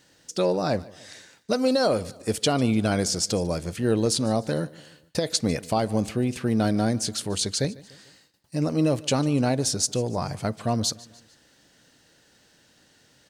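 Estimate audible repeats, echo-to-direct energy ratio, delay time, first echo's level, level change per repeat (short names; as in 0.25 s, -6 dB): 3, -20.5 dB, 0.148 s, -21.5 dB, -6.5 dB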